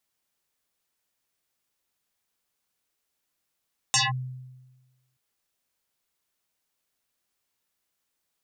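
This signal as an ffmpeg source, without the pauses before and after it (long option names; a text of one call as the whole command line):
ffmpeg -f lavfi -i "aevalsrc='0.141*pow(10,-3*t/1.25)*sin(2*PI*128*t+9.1*clip(1-t/0.18,0,1)*sin(2*PI*7.19*128*t))':duration=1.23:sample_rate=44100" out.wav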